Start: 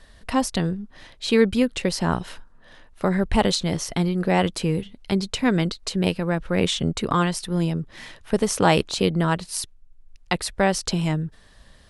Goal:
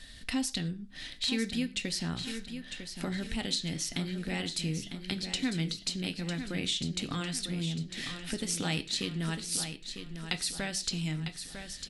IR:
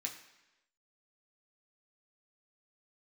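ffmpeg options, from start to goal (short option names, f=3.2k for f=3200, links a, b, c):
-filter_complex "[0:a]equalizer=f=500:t=o:w=1:g=-8,equalizer=f=1k:t=o:w=1:g=-12,equalizer=f=4k:t=o:w=1:g=5,acompressor=threshold=-39dB:ratio=2.5,aecho=1:1:951|1902|2853|3804|4755:0.355|0.153|0.0656|0.0282|0.0121,asplit=2[a][b];[1:a]atrim=start_sample=2205,afade=t=out:st=0.17:d=0.01,atrim=end_sample=7938[c];[b][c]afir=irnorm=-1:irlink=0,volume=-1.5dB[d];[a][d]amix=inputs=2:normalize=0"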